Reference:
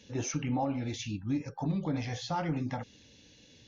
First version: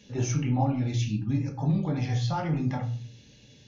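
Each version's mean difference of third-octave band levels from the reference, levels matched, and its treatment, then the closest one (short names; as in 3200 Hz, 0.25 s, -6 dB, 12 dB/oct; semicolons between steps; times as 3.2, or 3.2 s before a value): 4.0 dB: bell 120 Hz +10.5 dB 0.47 oct; shoebox room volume 310 m³, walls furnished, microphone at 1.3 m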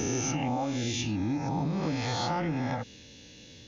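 6.0 dB: spectral swells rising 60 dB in 1.46 s; compressor, threshold -31 dBFS, peak gain reduction 7.5 dB; gain +4.5 dB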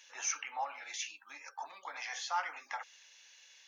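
13.5 dB: HPF 1000 Hz 24 dB/oct; bell 3900 Hz -8.5 dB 1 oct; gain +6 dB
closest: first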